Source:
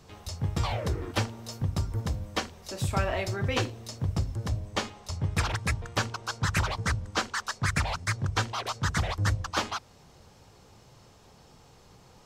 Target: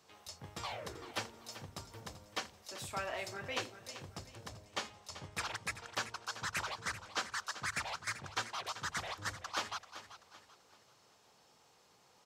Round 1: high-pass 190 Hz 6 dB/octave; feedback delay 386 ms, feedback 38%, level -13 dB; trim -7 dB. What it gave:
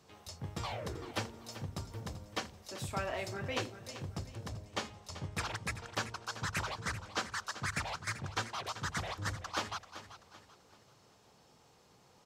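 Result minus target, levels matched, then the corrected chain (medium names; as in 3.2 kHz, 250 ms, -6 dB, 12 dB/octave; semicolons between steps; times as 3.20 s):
250 Hz band +5.5 dB
high-pass 680 Hz 6 dB/octave; feedback delay 386 ms, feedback 38%, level -13 dB; trim -7 dB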